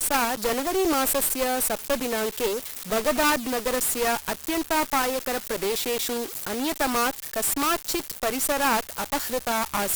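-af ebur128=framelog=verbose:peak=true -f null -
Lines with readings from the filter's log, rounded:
Integrated loudness:
  I:         -24.7 LUFS
  Threshold: -34.7 LUFS
Loudness range:
  LRA:         1.7 LU
  Threshold: -44.9 LUFS
  LRA low:   -25.7 LUFS
  LRA high:  -24.0 LUFS
True peak:
  Peak:       -9.3 dBFS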